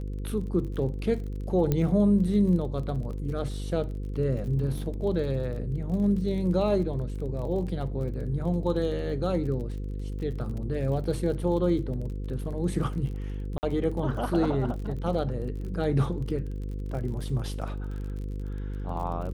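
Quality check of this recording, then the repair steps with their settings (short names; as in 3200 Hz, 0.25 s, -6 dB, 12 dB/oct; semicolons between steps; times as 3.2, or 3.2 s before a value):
buzz 50 Hz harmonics 10 -33 dBFS
crackle 33/s -37 dBFS
1.72 pop -13 dBFS
13.58–13.63 gap 49 ms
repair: de-click; de-hum 50 Hz, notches 10; interpolate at 13.58, 49 ms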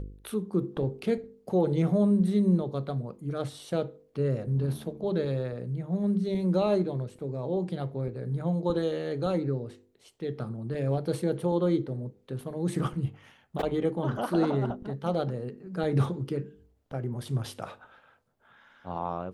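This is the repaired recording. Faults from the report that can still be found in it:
none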